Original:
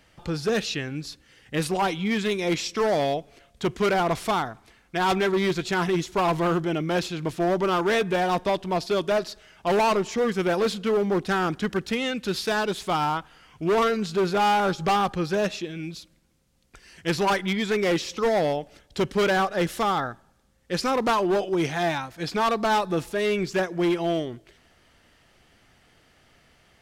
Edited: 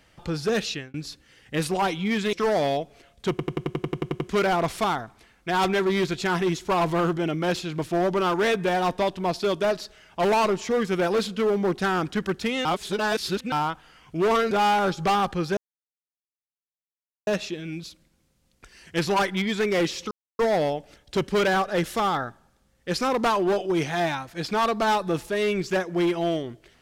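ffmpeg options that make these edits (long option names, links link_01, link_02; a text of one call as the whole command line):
ffmpeg -i in.wav -filter_complex "[0:a]asplit=18[link_01][link_02][link_03][link_04][link_05][link_06][link_07][link_08][link_09][link_10][link_11][link_12][link_13][link_14][link_15][link_16][link_17][link_18];[link_01]atrim=end=0.94,asetpts=PTS-STARTPTS,afade=type=out:start_time=0.69:duration=0.25[link_19];[link_02]atrim=start=0.94:end=2.332,asetpts=PTS-STARTPTS,afade=type=in:duration=0.004:curve=hsin[link_20];[link_03]atrim=start=2.698:end=3.762[link_21];[link_04]atrim=start=3.668:end=3.762[link_22];[link_05]atrim=start=3.668:end=3.762[link_23];[link_06]atrim=start=3.668:end=3.762[link_24];[link_07]atrim=start=3.668:end=3.762[link_25];[link_08]atrim=start=3.668:end=3.762[link_26];[link_09]atrim=start=3.668:end=3.762[link_27];[link_10]atrim=start=3.668:end=3.762[link_28];[link_11]atrim=start=3.668:end=3.762[link_29];[link_12]atrim=start=3.668:end=3.762[link_30];[link_13]atrim=start=3.668:end=12.122[link_31];[link_14]atrim=start=12.118:end=12.992,asetpts=PTS-STARTPTS,areverse[link_32];[link_15]atrim=start=12.988:end=13.982[link_33];[link_16]atrim=start=14.318:end=15.38,asetpts=PTS-STARTPTS,afade=type=out:start_time=1.058:duration=0.004:curve=hsin,apad=pad_dur=1.7[link_34];[link_17]atrim=start=15.38:end=18.22,asetpts=PTS-STARTPTS,afade=type=in:duration=0.004:curve=hsin,afade=type=out:start_time=2.836:duration=0.004:curve=hsin,apad=pad_dur=0.28[link_35];[link_18]atrim=start=18.22,asetpts=PTS-STARTPTS,afade=type=in:duration=0.004:curve=hsin[link_36];[link_19][link_20]concat=n=2:v=0:a=1[link_37];[link_37][link_21]acrossfade=duration=0.004:curve1=hsin:curve2=hsin[link_38];[link_38][link_22]acrossfade=duration=0.004:curve1=hsin:curve2=hsin[link_39];[link_39][link_23]acrossfade=duration=0.004:curve1=hsin:curve2=hsin[link_40];[link_40][link_24]acrossfade=duration=0.004:curve1=hsin:curve2=hsin[link_41];[link_41][link_25]acrossfade=duration=0.004:curve1=hsin:curve2=hsin[link_42];[link_42][link_26]acrossfade=duration=0.004:curve1=hsin:curve2=hsin[link_43];[link_43][link_27]acrossfade=duration=0.004:curve1=hsin:curve2=hsin[link_44];[link_44][link_28]acrossfade=duration=0.004:curve1=hsin:curve2=hsin[link_45];[link_45][link_29]acrossfade=duration=0.004:curve1=hsin:curve2=hsin[link_46];[link_46][link_30]acrossfade=duration=0.004:curve1=hsin:curve2=hsin[link_47];[link_47][link_31]acrossfade=duration=0.004:curve1=hsin:curve2=hsin[link_48];[link_48][link_32]acrossfade=duration=0.004:curve1=hsin:curve2=hsin[link_49];[link_49][link_33]acrossfade=duration=0.004:curve1=hsin:curve2=hsin[link_50];[link_34][link_35][link_36]concat=n=3:v=0:a=1[link_51];[link_50][link_51]acrossfade=duration=0.004:curve1=hsin:curve2=hsin" out.wav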